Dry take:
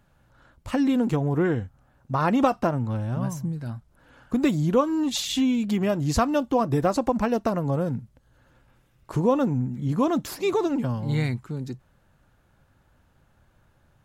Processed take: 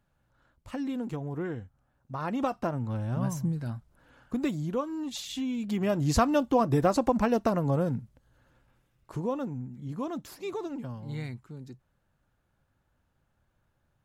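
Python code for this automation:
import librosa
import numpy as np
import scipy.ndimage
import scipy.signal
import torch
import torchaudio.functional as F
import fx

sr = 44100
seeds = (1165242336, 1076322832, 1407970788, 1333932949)

y = fx.gain(x, sr, db=fx.line((2.18, -11.0), (3.47, 0.0), (4.76, -10.0), (5.45, -10.0), (6.01, -1.5), (7.8, -1.5), (9.57, -11.5)))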